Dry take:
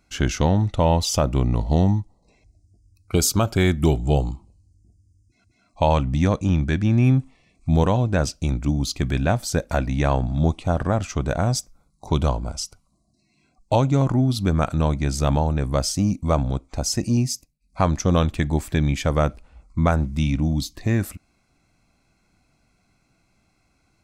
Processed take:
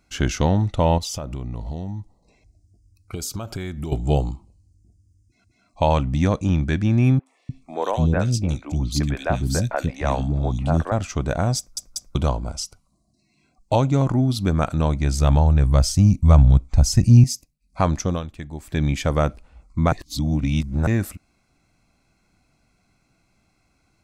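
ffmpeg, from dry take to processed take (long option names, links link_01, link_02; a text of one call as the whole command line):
ffmpeg -i in.wav -filter_complex "[0:a]asettb=1/sr,asplit=3[link_01][link_02][link_03];[link_01]atrim=end=0.984[link_04];[link_02]atrim=start=0.98:end=3.92,asetpts=PTS-STARTPTS,afade=type=in:duration=0.004:curve=qsin,afade=type=out:start_time=2.936:duration=0.004:curve=qsin,acompressor=threshold=-26dB:ratio=6:attack=3.2:release=140:knee=1:detection=peak[link_05];[link_03]atrim=start=3.916[link_06];[link_04][link_05]acrossfade=duration=0.004:curve1=hsin:curve2=qsin[link_07];[link_07][link_06]acrossfade=duration=0.004:curve1=qsin:curve2=hsin,asettb=1/sr,asplit=3[link_08][link_09][link_10];[link_08]atrim=end=7.194[link_11];[link_09]atrim=start=7.19:end=10.92,asetpts=PTS-STARTPTS,afade=type=in:duration=0.004:curve=qsin,afade=type=out:start_time=3.726:duration=0.004:curve=qsin,acrossover=split=360|2500[link_12][link_13][link_14];[link_14]adelay=70[link_15];[link_12]adelay=300[link_16];[link_16][link_13][link_15]amix=inputs=3:normalize=0,atrim=end_sample=164493[link_17];[link_10]atrim=start=10.916[link_18];[link_11][link_17]acrossfade=duration=0.004:curve1=hsin:curve2=qsin[link_19];[link_19][link_18]acrossfade=duration=0.004:curve1=qsin:curve2=hsin,asettb=1/sr,asplit=3[link_20][link_21][link_22];[link_20]atrim=end=14.824[link_23];[link_21]atrim=start=14.82:end=17.24,asetpts=PTS-STARTPTS,afade=type=in:duration=0.004:curve=qsin,afade=type=out:start_time=2.416:duration=0.004:curve=qsin,asubboost=boost=11:cutoff=140[link_24];[link_22]atrim=start=17.236[link_25];[link_23][link_24]acrossfade=duration=0.004:curve1=hsin:curve2=qsin[link_26];[link_26][link_25]acrossfade=duration=0.004:curve1=qsin:curve2=hsin,asplit=8[link_27][link_28][link_29][link_30][link_31][link_32][link_33][link_34];[link_27]atrim=end=11.772[link_35];[link_28]atrim=start=11.578:end=11.772[link_36];[link_29]atrim=start=11.578:end=11.772[link_37];[link_30]atrim=start=12.148:end=18.22,asetpts=PTS-STARTPTS,afade=type=out:start_time=5.832:duration=0.24:silence=0.251189[link_38];[link_31]atrim=start=18.22:end=18.6,asetpts=PTS-STARTPTS,volume=-12dB[link_39];[link_32]atrim=start=18.6:end=19.922,asetpts=PTS-STARTPTS,afade=type=in:duration=0.24:silence=0.251189[link_40];[link_33]atrim=start=19.918:end=20.872,asetpts=PTS-STARTPTS,areverse[link_41];[link_34]atrim=start=20.868[link_42];[link_35][link_36]acrossfade=duration=0.004:curve1=hsin:curve2=hsin[link_43];[link_43][link_37]acrossfade=duration=0.004:curve1=hsin:curve2=hsin[link_44];[link_38][link_39][link_40]concat=n=3:v=0:a=1[link_45];[link_44][link_45]acrossfade=duration=0.004:curve1=hsin:curve2=hsin[link_46];[link_46][link_41]acrossfade=duration=0.004:curve1=hsin:curve2=hsin[link_47];[link_47][link_42]acrossfade=duration=0.004:curve1=hsin:curve2=hsin" out.wav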